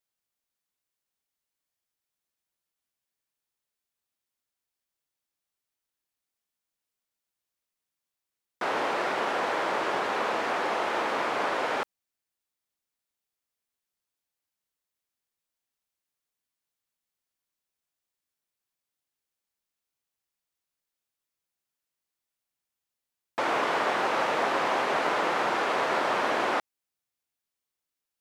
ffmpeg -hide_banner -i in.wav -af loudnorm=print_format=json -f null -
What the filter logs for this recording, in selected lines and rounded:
"input_i" : "-27.3",
"input_tp" : "-14.1",
"input_lra" : "6.8",
"input_thresh" : "-37.4",